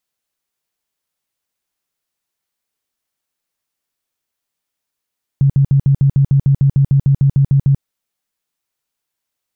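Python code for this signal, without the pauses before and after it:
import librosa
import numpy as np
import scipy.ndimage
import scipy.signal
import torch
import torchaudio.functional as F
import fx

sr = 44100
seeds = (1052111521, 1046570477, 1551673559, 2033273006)

y = fx.tone_burst(sr, hz=138.0, cycles=12, every_s=0.15, bursts=16, level_db=-7.5)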